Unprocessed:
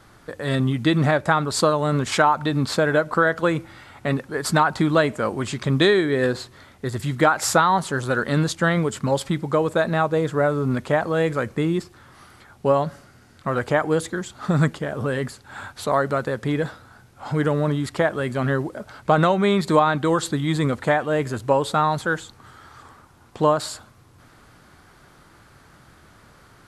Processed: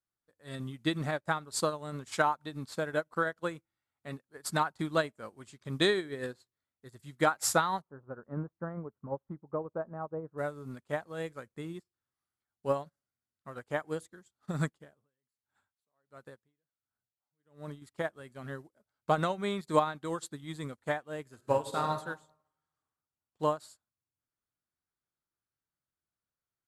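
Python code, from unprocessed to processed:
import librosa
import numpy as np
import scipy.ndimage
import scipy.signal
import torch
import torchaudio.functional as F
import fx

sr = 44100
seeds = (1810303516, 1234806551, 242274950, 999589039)

y = fx.lowpass(x, sr, hz=1200.0, slope=24, at=(7.8, 10.37), fade=0.02)
y = fx.tremolo_db(y, sr, hz=1.4, depth_db=20, at=(14.84, 17.82))
y = fx.reverb_throw(y, sr, start_s=21.27, length_s=0.69, rt60_s=1.7, drr_db=2.0)
y = fx.high_shelf(y, sr, hz=6000.0, db=11.5)
y = fx.upward_expand(y, sr, threshold_db=-39.0, expansion=2.5)
y = F.gain(torch.from_numpy(y), -7.0).numpy()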